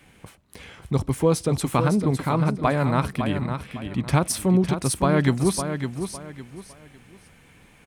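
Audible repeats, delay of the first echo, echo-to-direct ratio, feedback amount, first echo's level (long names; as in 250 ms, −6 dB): 3, 557 ms, −7.5 dB, 29%, −8.0 dB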